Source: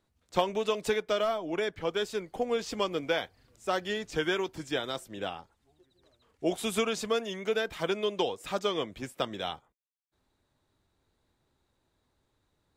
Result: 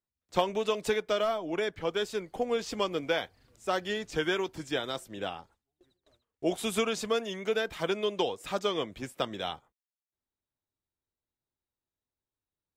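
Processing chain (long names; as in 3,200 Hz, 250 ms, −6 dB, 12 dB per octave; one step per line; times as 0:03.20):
noise gate with hold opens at −54 dBFS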